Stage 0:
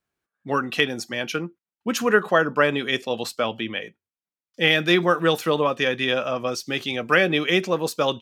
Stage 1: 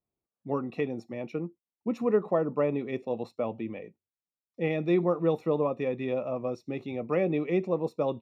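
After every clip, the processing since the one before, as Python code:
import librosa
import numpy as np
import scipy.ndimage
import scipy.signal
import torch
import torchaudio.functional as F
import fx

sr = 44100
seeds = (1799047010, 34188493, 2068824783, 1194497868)

y = np.convolve(x, np.full(28, 1.0 / 28))[:len(x)]
y = y * librosa.db_to_amplitude(-3.5)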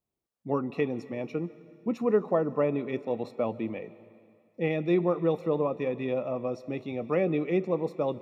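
y = fx.rider(x, sr, range_db=3, speed_s=2.0)
y = fx.rev_plate(y, sr, seeds[0], rt60_s=2.2, hf_ratio=1.0, predelay_ms=120, drr_db=17.5)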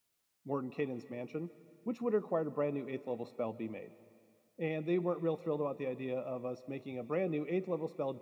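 y = fx.quant_dither(x, sr, seeds[1], bits=12, dither='triangular')
y = y * librosa.db_to_amplitude(-8.0)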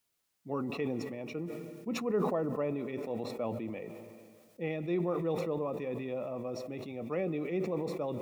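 y = fx.sustainer(x, sr, db_per_s=30.0)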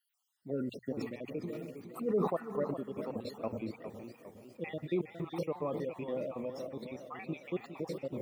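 y = fx.spec_dropout(x, sr, seeds[2], share_pct=55)
y = fx.hum_notches(y, sr, base_hz=60, count=2)
y = fx.echo_warbled(y, sr, ms=410, feedback_pct=51, rate_hz=2.8, cents=130, wet_db=-10)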